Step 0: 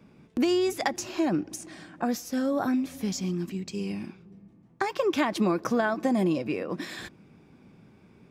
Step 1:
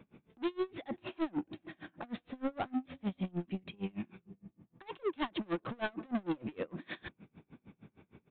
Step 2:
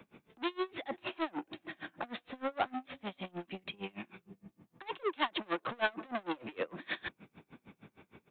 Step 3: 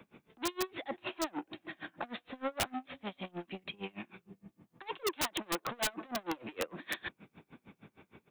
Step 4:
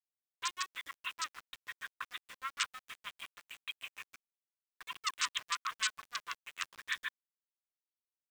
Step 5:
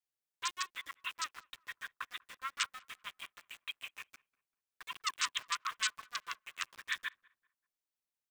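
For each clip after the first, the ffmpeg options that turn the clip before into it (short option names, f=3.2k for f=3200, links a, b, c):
-af "aresample=8000,asoftclip=type=tanh:threshold=-29.5dB,aresample=44100,aeval=exprs='val(0)*pow(10,-31*(0.5-0.5*cos(2*PI*6.5*n/s))/20)':c=same,volume=2dB"
-filter_complex "[0:a]lowshelf=f=370:g=-10.5,acrossover=split=370|510[a][b][c];[a]acompressor=threshold=-52dB:ratio=6[d];[d][b][c]amix=inputs=3:normalize=0,volume=7dB"
-af "aeval=exprs='(mod(16.8*val(0)+1,2)-1)/16.8':c=same"
-af "afftfilt=real='re*between(b*sr/4096,990,8600)':imag='im*between(b*sr/4096,990,8600)':win_size=4096:overlap=0.75,aeval=exprs='val(0)*gte(abs(val(0)),0.00355)':c=same,volume=2dB"
-filter_complex "[0:a]asplit=2[a][b];[b]adelay=194,lowpass=f=1.5k:p=1,volume=-24dB,asplit=2[c][d];[d]adelay=194,lowpass=f=1.5k:p=1,volume=0.4,asplit=2[e][f];[f]adelay=194,lowpass=f=1.5k:p=1,volume=0.4[g];[a][c][e][g]amix=inputs=4:normalize=0"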